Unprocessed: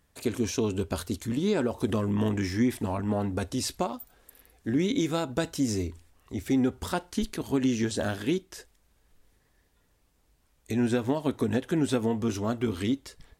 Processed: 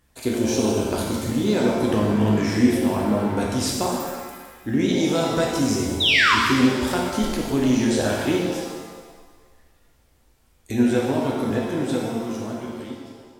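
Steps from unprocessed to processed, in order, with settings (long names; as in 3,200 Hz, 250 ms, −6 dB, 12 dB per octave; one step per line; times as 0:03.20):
fade-out on the ending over 2.85 s
sound drawn into the spectrogram fall, 0:06.00–0:06.35, 930–4,000 Hz −23 dBFS
reverb with rising layers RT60 1.4 s, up +7 semitones, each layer −8 dB, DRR −2.5 dB
level +2.5 dB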